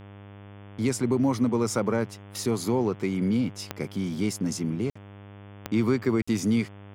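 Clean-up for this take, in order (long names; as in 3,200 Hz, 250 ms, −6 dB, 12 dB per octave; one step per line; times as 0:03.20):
click removal
hum removal 100.4 Hz, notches 35
repair the gap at 0:04.90/0:06.22, 55 ms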